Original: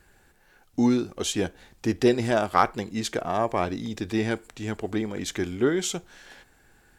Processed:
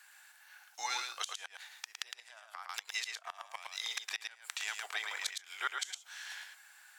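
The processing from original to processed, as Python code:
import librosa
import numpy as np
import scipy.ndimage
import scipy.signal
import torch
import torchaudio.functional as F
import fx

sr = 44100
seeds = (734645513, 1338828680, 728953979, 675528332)

y = scipy.signal.sosfilt(scipy.signal.bessel(6, 1400.0, 'highpass', norm='mag', fs=sr, output='sos'), x)
y = fx.gate_flip(y, sr, shuts_db=-25.0, range_db=-27)
y = y + 10.0 ** (-5.0 / 20.0) * np.pad(y, (int(111 * sr / 1000.0), 0))[:len(y)]
y = fx.band_squash(y, sr, depth_pct=100, at=(2.69, 4.86))
y = y * 10.0 ** (4.5 / 20.0)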